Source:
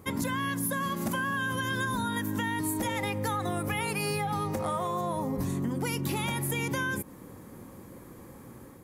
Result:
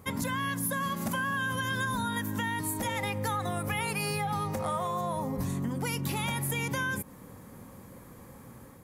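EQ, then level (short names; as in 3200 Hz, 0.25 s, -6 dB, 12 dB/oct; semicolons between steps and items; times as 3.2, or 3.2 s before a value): bell 340 Hz -8 dB 0.52 oct; 0.0 dB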